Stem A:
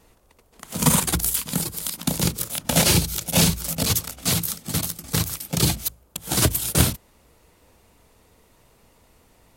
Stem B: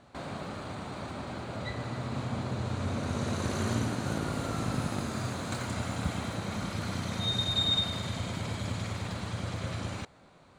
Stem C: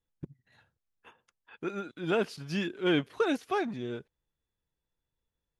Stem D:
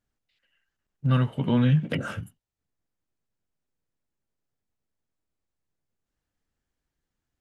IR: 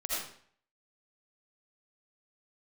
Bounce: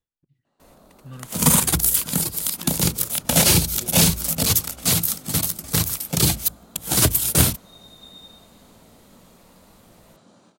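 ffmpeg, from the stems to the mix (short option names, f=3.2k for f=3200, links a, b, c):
-filter_complex "[0:a]crystalizer=i=0.5:c=0,asoftclip=type=tanh:threshold=-3dB,adelay=600,volume=1dB[a];[1:a]highpass=f=170:w=0.5412,highpass=f=170:w=1.3066,equalizer=f=2.2k:w=1.3:g=-12,flanger=delay=17.5:depth=5.4:speed=0.95,adelay=450,volume=-12.5dB,asplit=2[b][c];[c]volume=-10.5dB[d];[2:a]acompressor=threshold=-34dB:ratio=6,aeval=exprs='val(0)*pow(10,-31*(0.5-0.5*cos(2*PI*2.6*n/s))/20)':c=same,volume=0dB,asplit=2[e][f];[f]volume=-19dB[g];[3:a]volume=-17.5dB[h];[4:a]atrim=start_sample=2205[i];[d][g]amix=inputs=2:normalize=0[j];[j][i]afir=irnorm=-1:irlink=0[k];[a][b][e][h][k]amix=inputs=5:normalize=0"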